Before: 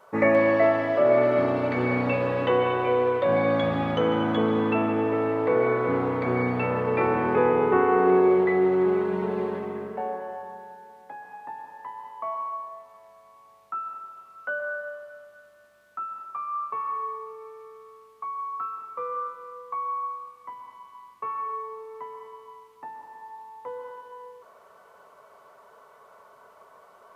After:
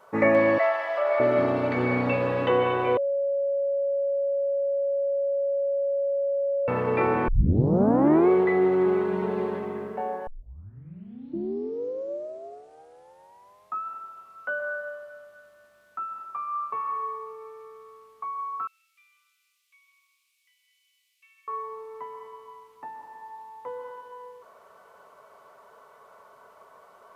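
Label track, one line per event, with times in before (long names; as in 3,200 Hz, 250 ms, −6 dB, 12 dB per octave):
0.580000	1.200000	high-pass filter 660 Hz 24 dB per octave
2.970000	6.680000	beep over 558 Hz −22.5 dBFS
7.280000	7.280000	tape start 1.01 s
10.270000	10.270000	tape start 3.59 s
18.670000	21.480000	elliptic high-pass filter 2,400 Hz, stop band 60 dB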